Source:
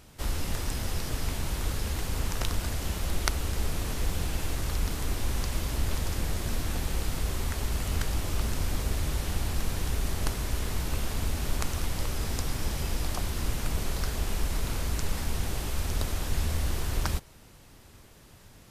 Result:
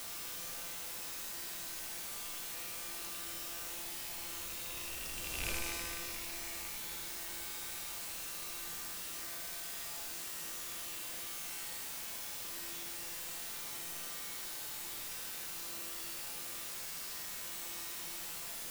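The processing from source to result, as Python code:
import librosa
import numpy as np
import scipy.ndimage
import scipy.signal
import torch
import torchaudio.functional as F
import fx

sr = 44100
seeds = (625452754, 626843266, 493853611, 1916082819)

p1 = fx.rattle_buzz(x, sr, strikes_db=-28.0, level_db=-17.0)
p2 = fx.doppler_pass(p1, sr, speed_mps=24, closest_m=1.8, pass_at_s=5.5)
p3 = fx.bass_treble(p2, sr, bass_db=-8, treble_db=8)
p4 = fx.quant_dither(p3, sr, seeds[0], bits=6, dither='triangular')
p5 = p3 + F.gain(torch.from_numpy(p4), -6.0).numpy()
p6 = fx.comb_fb(p5, sr, f0_hz=170.0, decay_s=2.0, harmonics='all', damping=0.0, mix_pct=90)
p7 = p6 + 10.0 ** (-5.5 / 20.0) * np.pad(p6, (int(79 * sr / 1000.0), 0))[:len(p6)]
p8 = fx.env_flatten(p7, sr, amount_pct=50)
y = F.gain(torch.from_numpy(p8), 6.5).numpy()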